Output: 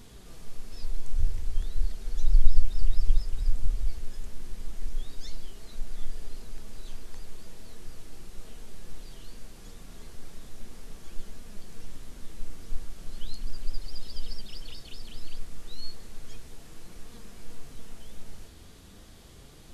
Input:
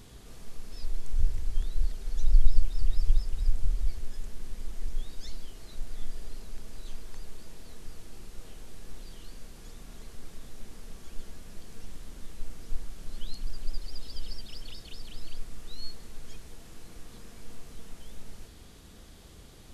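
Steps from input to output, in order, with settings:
flanger 0.35 Hz, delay 4.1 ms, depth 8.2 ms, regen +70%
level +5 dB

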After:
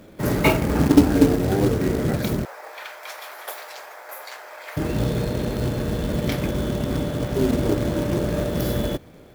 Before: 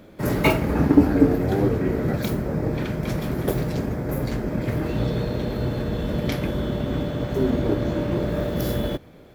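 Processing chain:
0:02.45–0:04.77: inverse Chebyshev high-pass filter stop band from 220 Hz, stop band 60 dB
floating-point word with a short mantissa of 2 bits
level +1 dB

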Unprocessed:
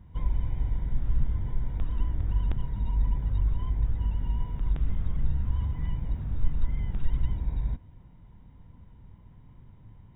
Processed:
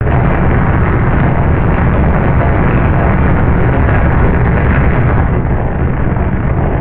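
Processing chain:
high-pass filter 43 Hz 12 dB per octave
low-shelf EQ 350 Hz −3.5 dB
in parallel at −2.5 dB: downward compressor, threshold −39 dBFS, peak gain reduction 13.5 dB
on the sum: auto-filter notch sine 0.63 Hz 660–1,500 Hz
fuzz pedal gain 51 dB, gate −49 dBFS
time stretch by overlap-add 0.67×, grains 173 ms
convolution reverb RT60 0.75 s, pre-delay 6 ms, DRR 0.5 dB
single-sideband voice off tune −310 Hz 190–2,400 Hz
boost into a limiter +17.5 dB
level −1 dB

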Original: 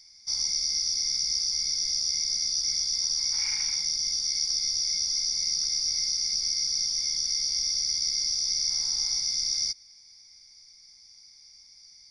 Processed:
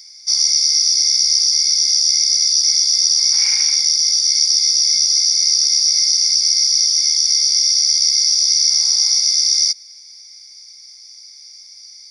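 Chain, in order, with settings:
spectral tilt +2.5 dB per octave
level +7 dB

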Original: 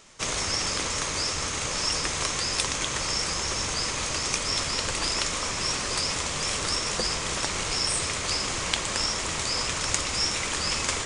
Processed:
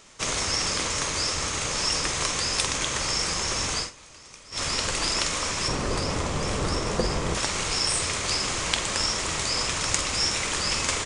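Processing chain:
0:03.78–0:04.63: duck −20.5 dB, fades 0.12 s
0:05.68–0:07.35: tilt shelving filter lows +7.5 dB, about 1,200 Hz
double-tracking delay 47 ms −11 dB
level +1 dB

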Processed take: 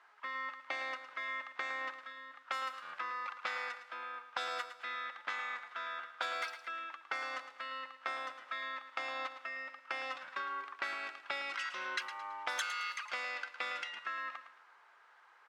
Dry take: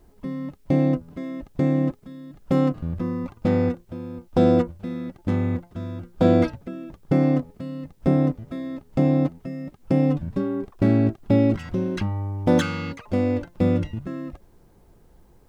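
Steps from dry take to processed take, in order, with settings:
Chebyshev high-pass filter 1,300 Hz, order 3
low-pass that shuts in the quiet parts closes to 1,700 Hz, open at −35 dBFS
downward compressor 6 to 1, threshold −50 dBFS, peak gain reduction 22 dB
repeating echo 110 ms, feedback 35%, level −11 dB
level +13.5 dB

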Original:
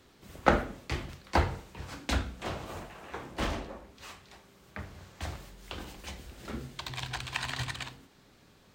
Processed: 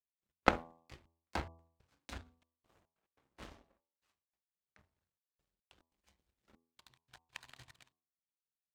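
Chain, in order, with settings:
gate pattern "x.x.xxxxxx..x" 142 BPM
power curve on the samples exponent 2
hum removal 82.63 Hz, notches 14
level +1 dB

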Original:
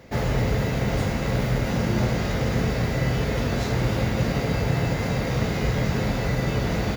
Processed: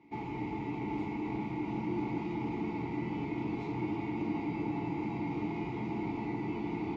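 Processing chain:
formant filter u
high-shelf EQ 7,300 Hz −4.5 dB
notch comb filter 260 Hz
bucket-brigade delay 385 ms, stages 4,096, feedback 76%, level −5.5 dB
saturating transformer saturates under 200 Hz
level +3 dB

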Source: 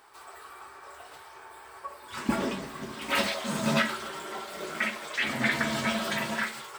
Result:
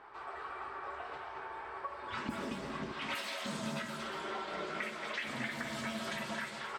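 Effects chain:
low-pass that shuts in the quiet parts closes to 1,900 Hz, open at −24.5 dBFS
0:02.93–0:03.46: high-pass filter 800 Hz 6 dB per octave
downward compressor 12 to 1, threshold −40 dBFS, peak gain reduction 20 dB
single-tap delay 227 ms −7 dB
level +3.5 dB

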